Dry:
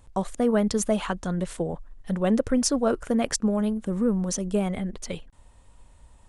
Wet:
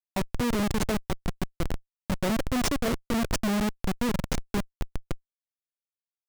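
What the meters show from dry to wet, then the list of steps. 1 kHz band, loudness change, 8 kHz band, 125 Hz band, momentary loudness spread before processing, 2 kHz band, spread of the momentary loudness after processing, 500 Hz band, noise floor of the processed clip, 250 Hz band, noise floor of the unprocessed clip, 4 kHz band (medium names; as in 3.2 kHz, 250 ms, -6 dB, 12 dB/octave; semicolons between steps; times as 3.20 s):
-1.0 dB, -4.0 dB, -6.0 dB, -1.5 dB, 10 LU, +3.0 dB, 12 LU, -7.0 dB, under -85 dBFS, -4.5 dB, -54 dBFS, +0.5 dB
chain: in parallel at -1 dB: compression 16:1, threshold -35 dBFS, peak gain reduction 18.5 dB; on the sum: Schmitt trigger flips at -20.5 dBFS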